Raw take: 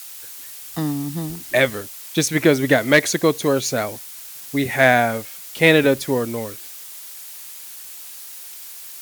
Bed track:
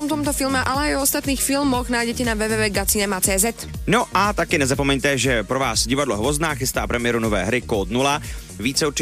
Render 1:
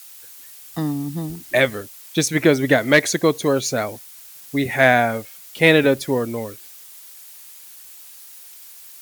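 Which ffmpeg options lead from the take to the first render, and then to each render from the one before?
-af "afftdn=nr=6:nf=-37"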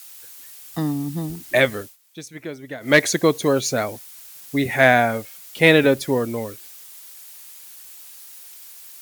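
-filter_complex "[0:a]asplit=3[s0][s1][s2];[s0]atrim=end=1.97,asetpts=PTS-STARTPTS,afade=t=out:st=1.82:d=0.15:silence=0.133352[s3];[s1]atrim=start=1.97:end=2.8,asetpts=PTS-STARTPTS,volume=0.133[s4];[s2]atrim=start=2.8,asetpts=PTS-STARTPTS,afade=t=in:d=0.15:silence=0.133352[s5];[s3][s4][s5]concat=n=3:v=0:a=1"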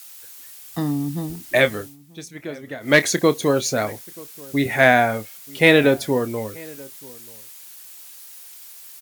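-filter_complex "[0:a]asplit=2[s0][s1];[s1]adelay=28,volume=0.224[s2];[s0][s2]amix=inputs=2:normalize=0,asplit=2[s3][s4];[s4]adelay=932.9,volume=0.0708,highshelf=f=4000:g=-21[s5];[s3][s5]amix=inputs=2:normalize=0"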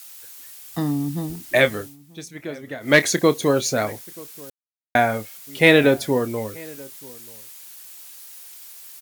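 -filter_complex "[0:a]asplit=3[s0][s1][s2];[s0]atrim=end=4.5,asetpts=PTS-STARTPTS,afade=t=out:st=4.496:d=0.004:c=hsin[s3];[s1]atrim=start=4.5:end=4.95,asetpts=PTS-STARTPTS,volume=0[s4];[s2]atrim=start=4.95,asetpts=PTS-STARTPTS,afade=t=in:d=0.004:c=hsin[s5];[s3][s4][s5]concat=n=3:v=0:a=1"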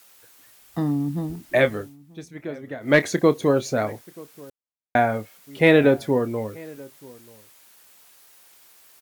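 -af "highshelf=f=2500:g=-12"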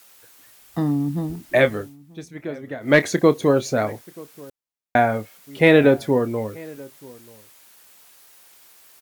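-af "volume=1.26,alimiter=limit=0.794:level=0:latency=1"

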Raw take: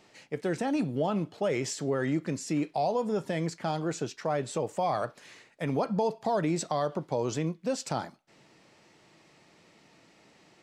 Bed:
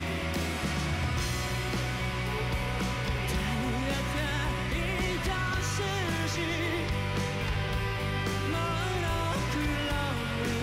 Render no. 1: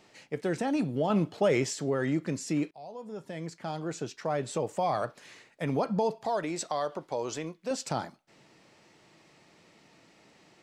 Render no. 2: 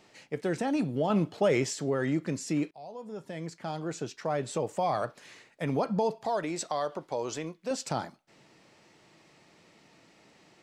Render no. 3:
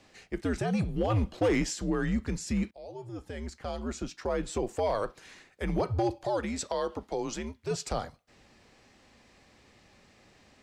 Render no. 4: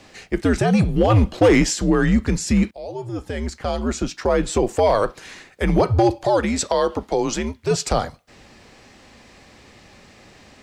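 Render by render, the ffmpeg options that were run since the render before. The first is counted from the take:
-filter_complex "[0:a]asettb=1/sr,asplit=3[s0][s1][s2];[s0]atrim=end=6.264[s3];[s1]atrim=start=6.26:end=7.71,asetpts=PTS-STARTPTS,afade=t=in:d=0.004:c=qsin,afade=t=out:st=1.446:d=0.004:c=qsin,equalizer=f=140:w=0.58:g=-11.5[s4];[s2]atrim=start=7.706[s5];[s3][s4]acrossfade=d=0.004:c1=hsin:c2=qsin[s6];[s6][s5]acrossfade=d=0.004:c1=qsin:c2=hsin,asplit=4[s7][s8][s9][s10];[s7]atrim=end=1.102[s11];[s8]atrim=start=1.098:end=1.642,asetpts=PTS-STARTPTS,volume=1.58[s12];[s9]atrim=start=1.638:end=2.71,asetpts=PTS-STARTPTS,afade=t=out:st=1.068:d=0.004:c=hsin:silence=0.0749894[s13];[s10]atrim=start=2.71,asetpts=PTS-STARTPTS,afade=t=in:d=1.82:silence=0.0749894[s14];[s11][s12]acrossfade=d=0.004:c1=hsin:c2=hsin[s15];[s13][s14]concat=n=2:v=0:a=1[s16];[s15][s16]acrossfade=d=0.004:c1=hsin:c2=hsin"
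-af anull
-af "afreqshift=-96,volume=10,asoftclip=hard,volume=0.1"
-af "volume=3.98"

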